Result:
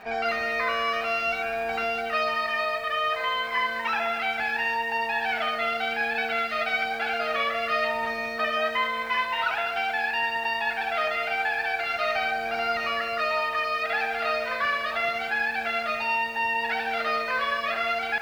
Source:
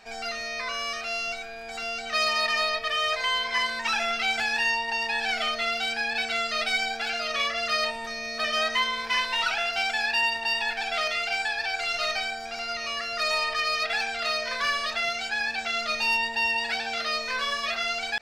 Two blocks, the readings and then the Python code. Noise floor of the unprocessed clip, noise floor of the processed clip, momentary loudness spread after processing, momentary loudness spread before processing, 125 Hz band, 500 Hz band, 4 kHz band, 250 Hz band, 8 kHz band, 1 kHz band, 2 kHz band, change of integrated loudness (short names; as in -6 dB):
-36 dBFS, -32 dBFS, 2 LU, 6 LU, n/a, +4.5 dB, -6.0 dB, +2.5 dB, under -10 dB, +3.5 dB, +0.5 dB, 0.0 dB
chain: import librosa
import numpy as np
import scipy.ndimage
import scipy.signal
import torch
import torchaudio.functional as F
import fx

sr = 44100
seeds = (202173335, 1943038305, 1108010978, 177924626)

y = scipy.signal.sosfilt(scipy.signal.butter(2, 2000.0, 'lowpass', fs=sr, output='sos'), x)
y = fx.dmg_crackle(y, sr, seeds[0], per_s=160.0, level_db=-56.0)
y = fx.highpass(y, sr, hz=81.0, slope=6)
y = y + 10.0 ** (-10.5 / 20.0) * np.pad(y, (int(72 * sr / 1000.0), 0))[:len(y)]
y = fx.rider(y, sr, range_db=10, speed_s=0.5)
y = fx.echo_crushed(y, sr, ms=201, feedback_pct=35, bits=8, wet_db=-11)
y = y * librosa.db_to_amplitude(3.5)